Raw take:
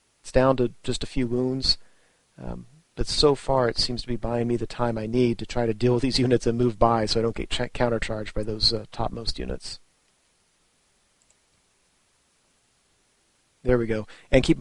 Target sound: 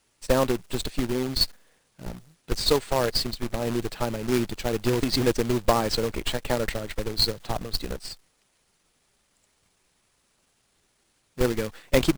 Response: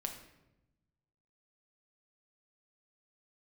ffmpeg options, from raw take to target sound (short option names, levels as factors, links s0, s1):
-af "aeval=exprs='if(lt(val(0),0),0.708*val(0),val(0))':c=same,atempo=1.2,acrusher=bits=2:mode=log:mix=0:aa=0.000001,volume=0.891"